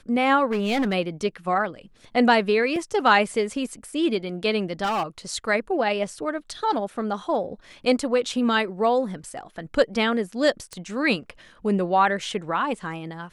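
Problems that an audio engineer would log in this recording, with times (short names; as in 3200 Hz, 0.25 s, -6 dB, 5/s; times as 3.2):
0.51–0.94 clipped -19.5 dBFS
2.76 gap 2.6 ms
4.83–5.03 clipped -21 dBFS
10.73 pop -20 dBFS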